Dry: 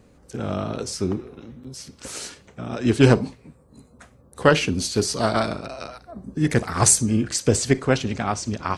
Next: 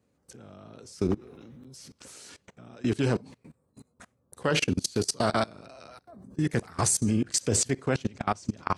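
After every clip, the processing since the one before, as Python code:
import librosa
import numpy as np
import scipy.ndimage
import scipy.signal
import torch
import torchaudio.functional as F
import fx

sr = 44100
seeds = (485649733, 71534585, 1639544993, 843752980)

y = scipy.signal.sosfilt(scipy.signal.butter(4, 74.0, 'highpass', fs=sr, output='sos'), x)
y = fx.high_shelf(y, sr, hz=8100.0, db=4.5)
y = fx.level_steps(y, sr, step_db=24)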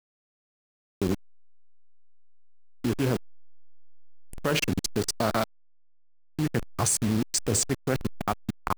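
y = fx.delta_hold(x, sr, step_db=-29.0)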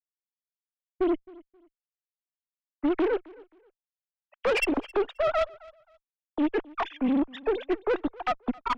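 y = fx.sine_speech(x, sr)
y = fx.tube_stage(y, sr, drive_db=25.0, bias=0.5)
y = fx.echo_feedback(y, sr, ms=265, feedback_pct=24, wet_db=-23)
y = F.gain(torch.from_numpy(y), 5.0).numpy()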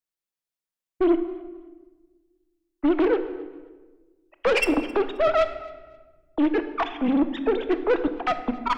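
y = fx.room_shoebox(x, sr, seeds[0], volume_m3=1100.0, walls='mixed', distance_m=0.66)
y = F.gain(torch.from_numpy(y), 3.5).numpy()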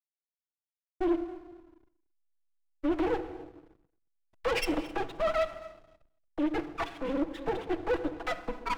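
y = fx.lower_of_two(x, sr, delay_ms=6.1)
y = fx.backlash(y, sr, play_db=-42.0)
y = y + 10.0 ** (-22.5 / 20.0) * np.pad(y, (int(226 * sr / 1000.0), 0))[:len(y)]
y = F.gain(torch.from_numpy(y), -7.5).numpy()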